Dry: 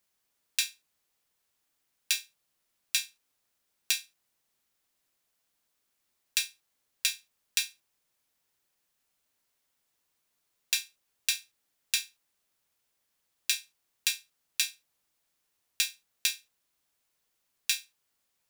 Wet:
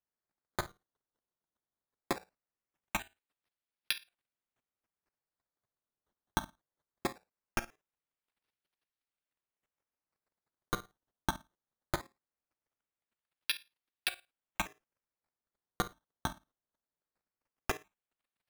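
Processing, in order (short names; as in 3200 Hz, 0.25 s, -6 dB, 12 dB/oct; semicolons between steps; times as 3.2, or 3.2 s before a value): steep low-pass 5500 Hz 48 dB/oct; level quantiser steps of 14 dB; decimation with a swept rate 12×, swing 100% 0.2 Hz; gain -2 dB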